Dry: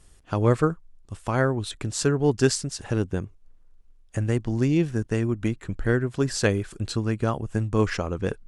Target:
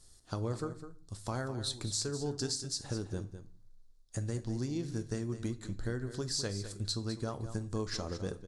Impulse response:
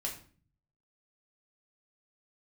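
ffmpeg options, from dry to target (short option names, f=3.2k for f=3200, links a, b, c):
-filter_complex "[0:a]highshelf=f=3.4k:t=q:w=3:g=7,acompressor=threshold=-24dB:ratio=6,aecho=1:1:205:0.266,asplit=2[a][b];[1:a]atrim=start_sample=2205,adelay=9[c];[b][c]afir=irnorm=-1:irlink=0,volume=-11dB[d];[a][d]amix=inputs=2:normalize=0,volume=-8.5dB"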